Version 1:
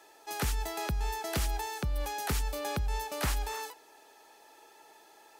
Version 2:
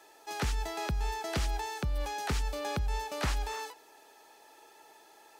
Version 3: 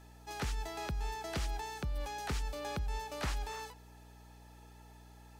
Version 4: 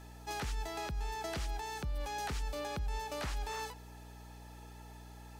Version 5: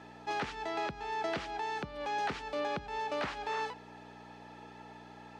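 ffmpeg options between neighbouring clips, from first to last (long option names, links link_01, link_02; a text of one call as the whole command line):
ffmpeg -i in.wav -filter_complex "[0:a]acrossover=split=7500[link_01][link_02];[link_02]acompressor=threshold=-54dB:ratio=4:attack=1:release=60[link_03];[link_01][link_03]amix=inputs=2:normalize=0" out.wav
ffmpeg -i in.wav -af "aeval=exprs='val(0)+0.00316*(sin(2*PI*60*n/s)+sin(2*PI*2*60*n/s)/2+sin(2*PI*3*60*n/s)/3+sin(2*PI*4*60*n/s)/4+sin(2*PI*5*60*n/s)/5)':channel_layout=same,volume=-5dB" out.wav
ffmpeg -i in.wav -af "alimiter=level_in=10dB:limit=-24dB:level=0:latency=1:release=256,volume=-10dB,volume=4.5dB" out.wav
ffmpeg -i in.wav -af "highpass=210,lowpass=3200,volume=6dB" out.wav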